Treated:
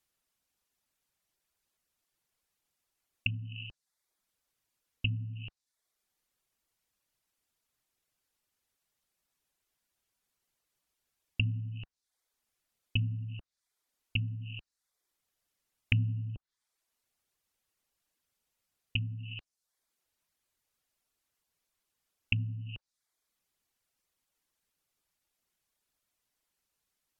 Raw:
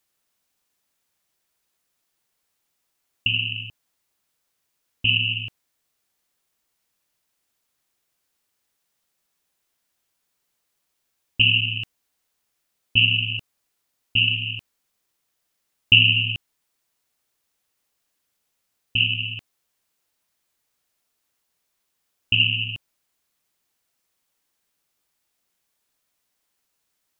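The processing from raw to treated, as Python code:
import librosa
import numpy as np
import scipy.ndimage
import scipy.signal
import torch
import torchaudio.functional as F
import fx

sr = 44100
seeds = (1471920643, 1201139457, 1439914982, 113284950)

y = fx.env_lowpass_down(x, sr, base_hz=340.0, full_db=-18.5)
y = fx.dereverb_blind(y, sr, rt60_s=0.58)
y = fx.low_shelf(y, sr, hz=93.0, db=8.0)
y = F.gain(torch.from_numpy(y), -5.5).numpy()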